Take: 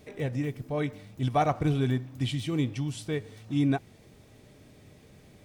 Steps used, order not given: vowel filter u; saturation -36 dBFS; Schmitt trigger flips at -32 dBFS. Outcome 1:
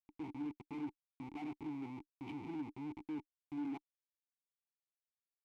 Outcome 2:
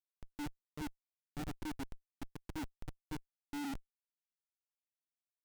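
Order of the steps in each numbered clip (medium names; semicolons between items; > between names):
Schmitt trigger > vowel filter > saturation; vowel filter > Schmitt trigger > saturation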